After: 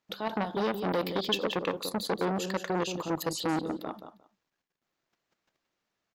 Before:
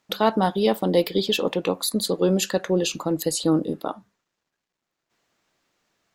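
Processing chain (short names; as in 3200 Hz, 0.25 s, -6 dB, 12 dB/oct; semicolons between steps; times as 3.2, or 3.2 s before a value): bell 9600 Hz -9.5 dB 0.58 oct; limiter -13.5 dBFS, peak gain reduction 8 dB; level quantiser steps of 12 dB; feedback echo 0.176 s, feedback 16%, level -10.5 dB; core saturation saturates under 1100 Hz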